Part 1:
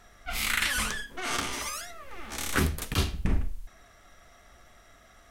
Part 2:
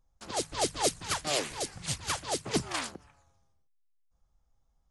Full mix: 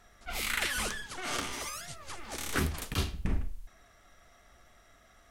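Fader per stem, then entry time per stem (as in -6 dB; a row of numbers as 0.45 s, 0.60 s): -4.5 dB, -13.0 dB; 0.00 s, 0.00 s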